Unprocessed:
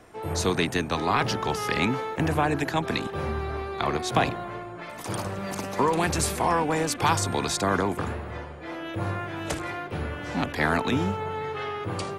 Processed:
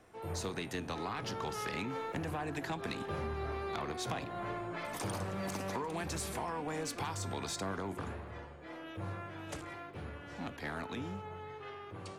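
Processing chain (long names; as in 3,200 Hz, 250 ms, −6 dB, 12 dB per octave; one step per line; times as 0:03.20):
source passing by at 0:04.01, 6 m/s, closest 8.3 metres
downward compressor 10 to 1, threshold −33 dBFS, peak gain reduction 16 dB
flanger 1.8 Hz, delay 9.7 ms, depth 1.6 ms, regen +85%
soft clipping −32.5 dBFS, distortion −20 dB
level +4.5 dB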